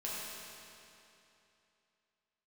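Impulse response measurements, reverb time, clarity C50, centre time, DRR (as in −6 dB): 2.9 s, −3.5 dB, 183 ms, −7.5 dB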